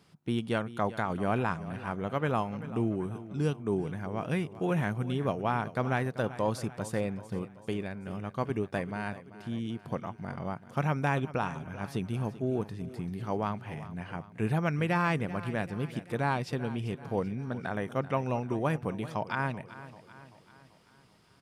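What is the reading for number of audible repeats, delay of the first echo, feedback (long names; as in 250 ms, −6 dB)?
4, 387 ms, 52%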